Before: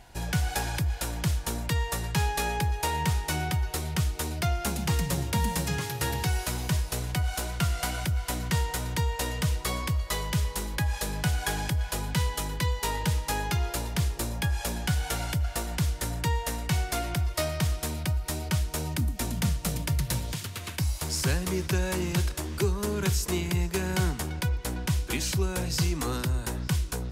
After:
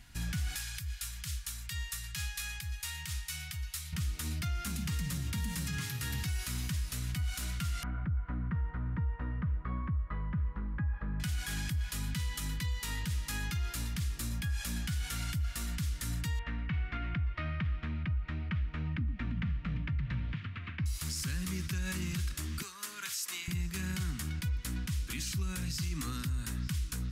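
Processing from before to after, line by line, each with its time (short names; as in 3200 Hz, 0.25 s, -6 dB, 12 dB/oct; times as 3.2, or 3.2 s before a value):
0.56–3.93 passive tone stack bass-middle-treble 10-0-10
7.83–11.2 LPF 1400 Hz 24 dB/oct
16.39–20.86 LPF 2500 Hz 24 dB/oct
22.62–23.48 HPF 780 Hz
whole clip: band shelf 580 Hz -15.5 dB; notch 1500 Hz, Q 24; limiter -25 dBFS; gain -2 dB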